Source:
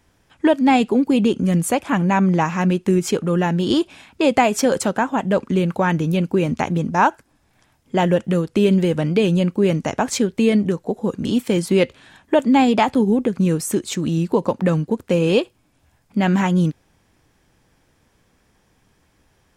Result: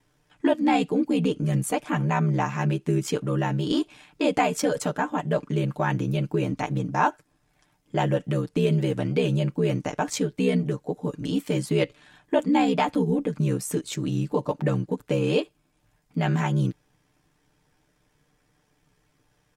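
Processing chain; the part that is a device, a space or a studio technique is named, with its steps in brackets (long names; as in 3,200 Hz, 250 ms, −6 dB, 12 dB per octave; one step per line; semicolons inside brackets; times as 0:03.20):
ring-modulated robot voice (ring modulation 34 Hz; comb filter 6.7 ms)
level −5 dB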